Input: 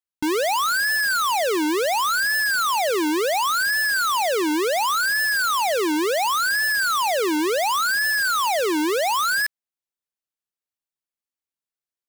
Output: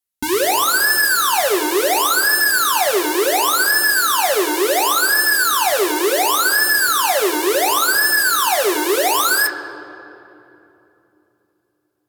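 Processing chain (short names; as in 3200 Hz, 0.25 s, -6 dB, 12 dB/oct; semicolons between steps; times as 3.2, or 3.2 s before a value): bell 13000 Hz +11 dB 1.4 oct; notch comb 160 Hz; on a send: reverb RT60 3.1 s, pre-delay 3 ms, DRR 4.5 dB; on the sum: gain +3.5 dB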